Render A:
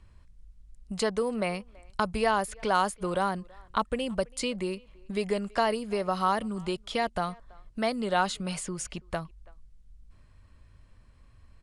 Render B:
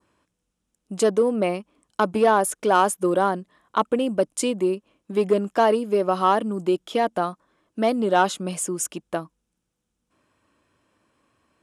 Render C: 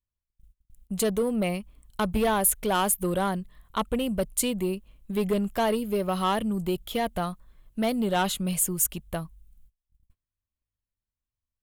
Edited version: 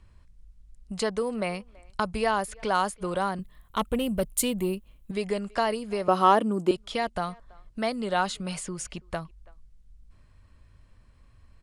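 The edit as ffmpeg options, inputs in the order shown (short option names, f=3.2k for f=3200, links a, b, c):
-filter_complex "[0:a]asplit=3[a][b][c];[a]atrim=end=3.392[d];[2:a]atrim=start=3.388:end=5.112[e];[b]atrim=start=5.108:end=6.082[f];[1:a]atrim=start=6.078:end=6.712[g];[c]atrim=start=6.708[h];[d][e]acrossfade=d=0.004:c1=hsin:c2=hsin[i];[i][f]acrossfade=d=0.004:c1=hsin:c2=hsin[j];[j][g]acrossfade=d=0.004:c1=hsin:c2=hsin[k];[k][h]acrossfade=d=0.004:c1=hsin:c2=hsin"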